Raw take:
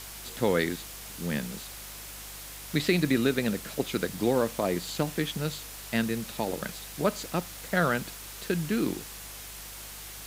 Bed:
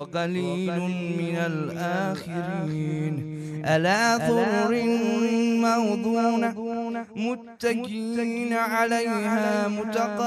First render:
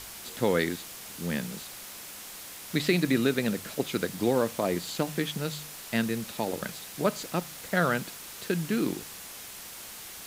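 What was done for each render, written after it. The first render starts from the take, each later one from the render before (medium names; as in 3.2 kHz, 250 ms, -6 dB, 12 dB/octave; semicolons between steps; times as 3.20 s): de-hum 50 Hz, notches 3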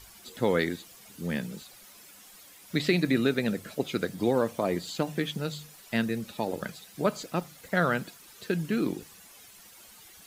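noise reduction 12 dB, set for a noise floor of -43 dBFS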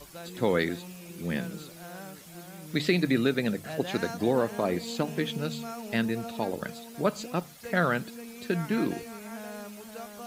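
add bed -17 dB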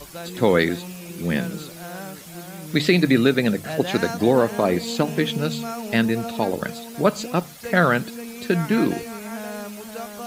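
trim +8 dB; peak limiter -3 dBFS, peak gain reduction 1 dB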